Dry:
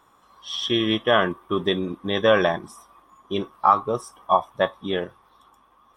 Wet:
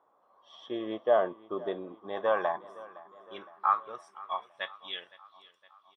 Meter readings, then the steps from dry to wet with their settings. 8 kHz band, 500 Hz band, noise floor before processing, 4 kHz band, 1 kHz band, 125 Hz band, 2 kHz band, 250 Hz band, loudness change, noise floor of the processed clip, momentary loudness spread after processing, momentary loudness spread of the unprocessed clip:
can't be measured, −8.0 dB, −59 dBFS, −16.5 dB, −9.0 dB, below −20 dB, −13.0 dB, −15.0 dB, −9.0 dB, −68 dBFS, 20 LU, 11 LU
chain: band-pass filter sweep 620 Hz → 3,900 Hz, 0:01.61–0:05.54
repeating echo 513 ms, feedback 57%, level −20 dB
level −2 dB

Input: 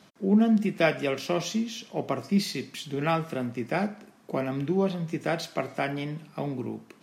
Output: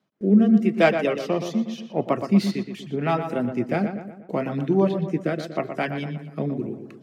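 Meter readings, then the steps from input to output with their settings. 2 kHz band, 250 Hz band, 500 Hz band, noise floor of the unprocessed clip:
+2.5 dB, +5.5 dB, +5.0 dB, −57 dBFS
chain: stylus tracing distortion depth 0.033 ms
high-pass filter 77 Hz
noise gate with hold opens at −42 dBFS
reverb reduction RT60 1 s
high-shelf EQ 3,100 Hz −9.5 dB
rotating-speaker cabinet horn 0.8 Hz
feedback echo with a low-pass in the loop 120 ms, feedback 51%, low-pass 2,900 Hz, level −8 dB
level +7 dB

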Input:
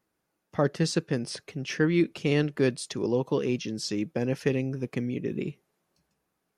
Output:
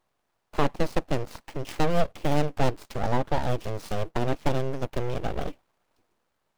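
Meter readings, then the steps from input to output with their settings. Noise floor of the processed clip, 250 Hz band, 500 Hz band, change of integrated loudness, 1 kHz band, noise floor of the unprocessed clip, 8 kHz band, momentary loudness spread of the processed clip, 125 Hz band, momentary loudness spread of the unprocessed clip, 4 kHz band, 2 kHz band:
−77 dBFS, −4.5 dB, −0.5 dB, −1.0 dB, +11.0 dB, −80 dBFS, −6.0 dB, 9 LU, +0.5 dB, 9 LU, −3.0 dB, −2.0 dB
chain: running median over 25 samples
full-wave rectification
one half of a high-frequency compander encoder only
level +4 dB

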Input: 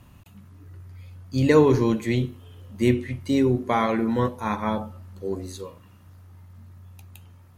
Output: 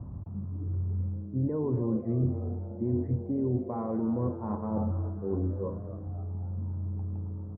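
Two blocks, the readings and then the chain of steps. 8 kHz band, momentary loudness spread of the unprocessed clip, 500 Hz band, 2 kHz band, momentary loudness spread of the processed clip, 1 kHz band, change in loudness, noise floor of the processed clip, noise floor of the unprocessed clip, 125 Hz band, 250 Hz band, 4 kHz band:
below −35 dB, 17 LU, −10.5 dB, below −30 dB, 8 LU, −13.5 dB, −9.0 dB, −40 dBFS, −51 dBFS, −1.5 dB, −6.5 dB, below −40 dB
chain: brickwall limiter −14.5 dBFS, peak gain reduction 9 dB
high-pass filter 68 Hz
reversed playback
downward compressor 5 to 1, threshold −37 dBFS, peak gain reduction 16.5 dB
reversed playback
low-pass filter 1,100 Hz 24 dB per octave
spectral tilt −3 dB per octave
on a send: echo with shifted repeats 268 ms, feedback 49%, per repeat +110 Hz, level −14 dB
on the sum: one half of a high-frequency compander decoder only
level +3 dB

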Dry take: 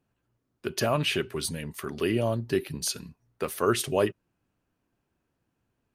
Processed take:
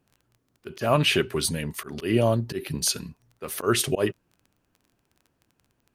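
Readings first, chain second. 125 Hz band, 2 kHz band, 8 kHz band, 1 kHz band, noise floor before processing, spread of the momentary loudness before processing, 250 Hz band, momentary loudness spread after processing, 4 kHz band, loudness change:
+4.5 dB, +3.5 dB, +5.0 dB, +2.5 dB, −79 dBFS, 11 LU, +3.0 dB, 13 LU, +5.0 dB, +3.5 dB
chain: volume swells 141 ms
surface crackle 12 per second −48 dBFS
level +5.5 dB

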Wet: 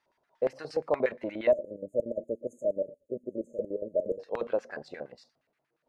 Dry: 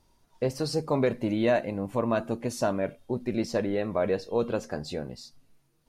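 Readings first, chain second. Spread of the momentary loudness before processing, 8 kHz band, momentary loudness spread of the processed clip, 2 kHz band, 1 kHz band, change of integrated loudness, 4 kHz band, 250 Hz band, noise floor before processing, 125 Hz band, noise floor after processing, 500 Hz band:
9 LU, below −15 dB, 12 LU, −5.5 dB, −8.0 dB, −3.5 dB, below −10 dB, −10.5 dB, −68 dBFS, −17.5 dB, −80 dBFS, −1.5 dB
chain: auto-filter band-pass square 8.5 Hz 600–1,800 Hz
time-frequency box erased 0:01.51–0:04.20, 630–6,300 Hz
level +4 dB

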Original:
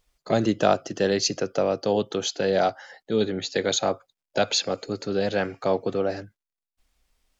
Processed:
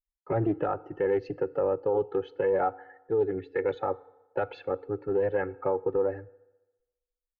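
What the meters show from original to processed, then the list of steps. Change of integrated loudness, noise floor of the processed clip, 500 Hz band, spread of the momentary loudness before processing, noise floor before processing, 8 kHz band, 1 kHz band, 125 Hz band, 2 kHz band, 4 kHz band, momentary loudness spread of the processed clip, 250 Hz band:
−4.5 dB, below −85 dBFS, −2.5 dB, 7 LU, below −85 dBFS, can't be measured, −4.5 dB, −4.0 dB, −8.0 dB, below −25 dB, 6 LU, −6.5 dB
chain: spectral dynamics exaggerated over time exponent 1.5
low-pass filter 1,700 Hz 24 dB per octave
noise gate with hold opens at −56 dBFS
comb filter 2.3 ms, depth 89%
brickwall limiter −18 dBFS, peak gain reduction 10 dB
feedback delay network reverb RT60 1.1 s, low-frequency decay 0.85×, high-frequency decay 0.75×, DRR 18.5 dB
highs frequency-modulated by the lows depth 0.22 ms

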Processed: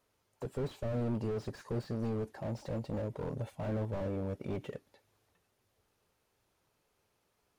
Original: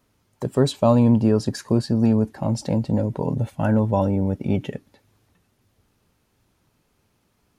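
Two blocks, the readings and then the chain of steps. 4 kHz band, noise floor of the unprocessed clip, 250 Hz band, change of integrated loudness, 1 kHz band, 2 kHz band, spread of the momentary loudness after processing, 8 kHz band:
−19.0 dB, −68 dBFS, −19.0 dB, −16.5 dB, −18.0 dB, −12.5 dB, 6 LU, below −20 dB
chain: low shelf with overshoot 340 Hz −6.5 dB, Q 1.5
slew-rate limiting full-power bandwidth 22 Hz
level −8 dB

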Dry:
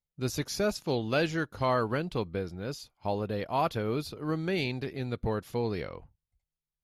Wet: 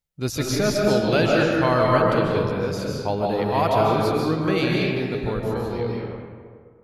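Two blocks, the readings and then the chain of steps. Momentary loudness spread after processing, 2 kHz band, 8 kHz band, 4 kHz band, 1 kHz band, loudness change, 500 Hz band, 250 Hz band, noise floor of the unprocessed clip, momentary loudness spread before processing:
9 LU, +9.5 dB, +8.5 dB, +8.5 dB, +10.0 dB, +10.0 dB, +10.5 dB, +10.0 dB, below −85 dBFS, 8 LU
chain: fade-out on the ending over 2.25 s
comb and all-pass reverb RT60 1.9 s, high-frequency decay 0.5×, pre-delay 105 ms, DRR −3 dB
level +5.5 dB

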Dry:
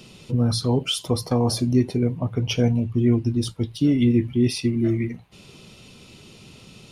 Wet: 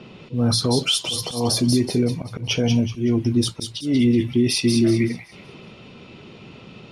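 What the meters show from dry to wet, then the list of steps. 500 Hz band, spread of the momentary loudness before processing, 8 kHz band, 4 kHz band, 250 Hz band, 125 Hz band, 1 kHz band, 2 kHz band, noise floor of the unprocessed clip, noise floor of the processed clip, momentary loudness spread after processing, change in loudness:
+1.5 dB, 6 LU, +7.0 dB, +6.5 dB, +1.5 dB, −1.0 dB, +0.5 dB, +5.5 dB, −48 dBFS, −44 dBFS, 7 LU, +1.5 dB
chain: low-pass that shuts in the quiet parts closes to 1,900 Hz, open at −19 dBFS
low-shelf EQ 93 Hz −12 dB
brickwall limiter −18 dBFS, peak gain reduction 8.5 dB
volume swells 142 ms
delay with a high-pass on its return 188 ms, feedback 37%, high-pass 2,800 Hz, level −4.5 dB
level +7.5 dB

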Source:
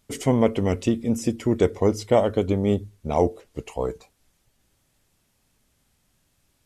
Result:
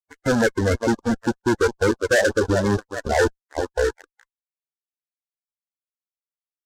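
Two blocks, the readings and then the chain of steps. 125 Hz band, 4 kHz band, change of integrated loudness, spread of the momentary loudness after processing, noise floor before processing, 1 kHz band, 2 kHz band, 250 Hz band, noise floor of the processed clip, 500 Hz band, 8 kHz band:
−0.5 dB, +6.5 dB, +1.5 dB, 6 LU, −69 dBFS, +2.5 dB, +16.0 dB, 0.0 dB, below −85 dBFS, +2.0 dB, +5.5 dB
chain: spectral dynamics exaggerated over time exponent 1.5
reverb reduction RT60 0.51 s
Chebyshev low-pass with heavy ripple 2,200 Hz, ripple 9 dB
notch filter 420 Hz, Q 12
on a send: repeating echo 404 ms, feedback 34%, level −16 dB
on the sum: fuzz pedal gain 37 dB, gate −43 dBFS
graphic EQ with 15 bands 160 Hz −12 dB, 630 Hz −3 dB, 1,600 Hz +7 dB
spectral peaks only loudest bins 32
parametric band 1,300 Hz −4.5 dB 0.24 octaves
short delay modulated by noise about 4,600 Hz, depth 0.032 ms

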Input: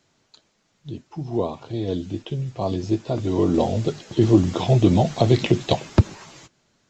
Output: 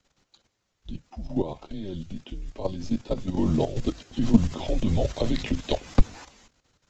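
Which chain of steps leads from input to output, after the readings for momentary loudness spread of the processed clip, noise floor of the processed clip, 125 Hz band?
17 LU, −77 dBFS, −9.0 dB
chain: output level in coarse steps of 11 dB
frequency shifter −99 Hz

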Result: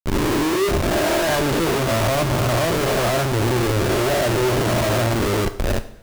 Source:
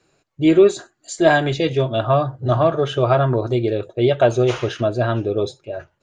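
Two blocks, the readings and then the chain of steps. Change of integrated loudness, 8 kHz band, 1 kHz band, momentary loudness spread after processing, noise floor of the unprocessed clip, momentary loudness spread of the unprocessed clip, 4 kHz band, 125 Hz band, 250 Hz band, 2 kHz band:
−1.0 dB, can't be measured, 0.0 dB, 2 LU, −67 dBFS, 8 LU, +5.0 dB, 0.0 dB, −1.0 dB, +2.5 dB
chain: peak hold with a rise ahead of every peak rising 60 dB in 1.32 s
comparator with hysteresis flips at −21.5 dBFS
coupled-rooms reverb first 0.57 s, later 2.2 s, from −18 dB, DRR 9.5 dB
level −4 dB

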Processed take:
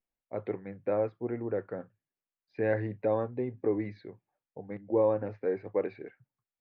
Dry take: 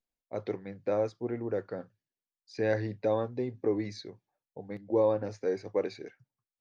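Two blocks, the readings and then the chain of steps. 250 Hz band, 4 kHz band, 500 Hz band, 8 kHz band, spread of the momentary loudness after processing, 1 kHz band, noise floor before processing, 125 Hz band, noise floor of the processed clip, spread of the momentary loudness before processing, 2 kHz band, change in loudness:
0.0 dB, below −15 dB, 0.0 dB, can't be measured, 19 LU, 0.0 dB, below −85 dBFS, 0.0 dB, below −85 dBFS, 18 LU, −0.5 dB, 0.0 dB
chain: low-pass filter 2,600 Hz 24 dB per octave

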